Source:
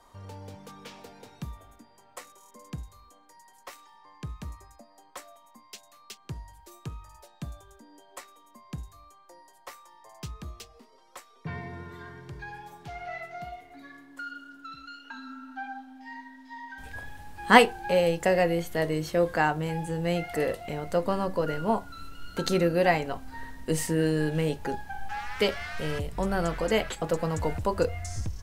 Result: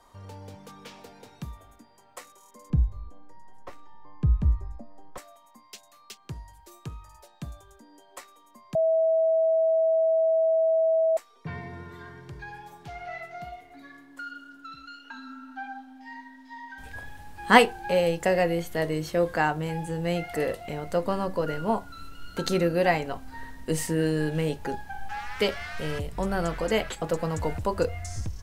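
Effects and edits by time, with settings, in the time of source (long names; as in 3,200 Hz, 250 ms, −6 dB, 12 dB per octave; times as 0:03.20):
0:02.70–0:05.18: spectral tilt −4.5 dB per octave
0:08.75–0:11.17: beep over 648 Hz −19 dBFS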